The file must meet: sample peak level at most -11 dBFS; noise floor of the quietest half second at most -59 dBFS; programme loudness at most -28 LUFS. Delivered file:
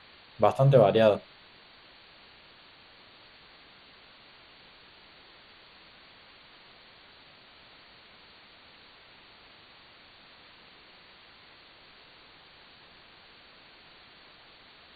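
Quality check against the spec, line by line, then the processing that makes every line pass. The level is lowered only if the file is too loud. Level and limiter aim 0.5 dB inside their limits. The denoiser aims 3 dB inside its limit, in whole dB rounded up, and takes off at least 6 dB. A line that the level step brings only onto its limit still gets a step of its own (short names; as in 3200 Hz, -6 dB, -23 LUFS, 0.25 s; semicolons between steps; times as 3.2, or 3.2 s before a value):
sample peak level -7.5 dBFS: fail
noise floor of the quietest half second -55 dBFS: fail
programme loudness -23.0 LUFS: fail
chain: gain -5.5 dB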